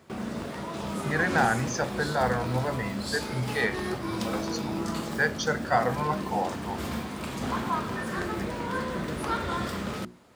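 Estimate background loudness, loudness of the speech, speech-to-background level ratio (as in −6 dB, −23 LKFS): −32.5 LKFS, −29.0 LKFS, 3.5 dB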